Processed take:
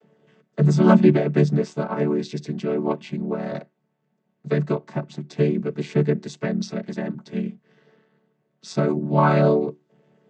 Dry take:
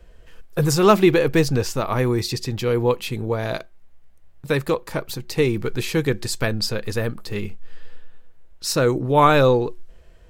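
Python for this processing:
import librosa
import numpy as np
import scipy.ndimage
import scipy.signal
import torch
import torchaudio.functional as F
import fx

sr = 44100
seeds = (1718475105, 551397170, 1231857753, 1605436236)

y = fx.chord_vocoder(x, sr, chord='major triad', root=50)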